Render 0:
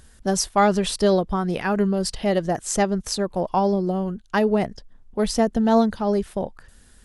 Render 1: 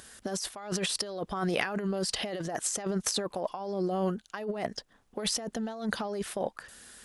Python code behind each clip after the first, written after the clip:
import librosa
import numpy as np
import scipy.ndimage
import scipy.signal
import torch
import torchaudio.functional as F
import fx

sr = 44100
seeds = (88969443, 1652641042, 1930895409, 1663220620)

y = fx.highpass(x, sr, hz=590.0, slope=6)
y = fx.notch(y, sr, hz=920.0, q=15.0)
y = fx.over_compress(y, sr, threshold_db=-33.0, ratio=-1.0)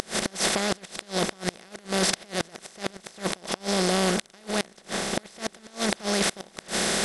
y = fx.bin_compress(x, sr, power=0.2)
y = fx.dmg_buzz(y, sr, base_hz=400.0, harmonics=31, level_db=-47.0, tilt_db=-9, odd_only=False)
y = fx.gate_flip(y, sr, shuts_db=-10.0, range_db=-27)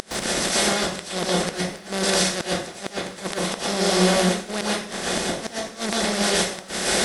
y = fx.dmg_crackle(x, sr, seeds[0], per_s=24.0, level_db=-40.0)
y = fx.rev_plate(y, sr, seeds[1], rt60_s=0.54, hf_ratio=0.9, predelay_ms=105, drr_db=-5.0)
y = F.gain(torch.from_numpy(y), -1.5).numpy()